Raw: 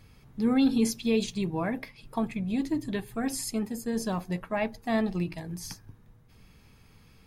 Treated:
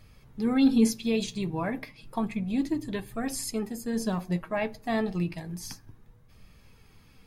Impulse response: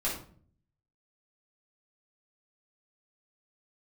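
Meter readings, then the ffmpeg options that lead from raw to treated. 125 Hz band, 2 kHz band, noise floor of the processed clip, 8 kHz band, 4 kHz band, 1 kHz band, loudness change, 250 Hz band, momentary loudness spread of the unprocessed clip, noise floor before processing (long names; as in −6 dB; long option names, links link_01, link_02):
+1.0 dB, 0.0 dB, −57 dBFS, 0.0 dB, 0.0 dB, 0.0 dB, +0.5 dB, +1.0 dB, 13 LU, −57 dBFS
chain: -filter_complex "[0:a]flanger=delay=1.6:depth=5.4:regen=63:speed=0.31:shape=sinusoidal,asplit=2[link_01][link_02];[1:a]atrim=start_sample=2205[link_03];[link_02][link_03]afir=irnorm=-1:irlink=0,volume=-26dB[link_04];[link_01][link_04]amix=inputs=2:normalize=0,volume=4dB"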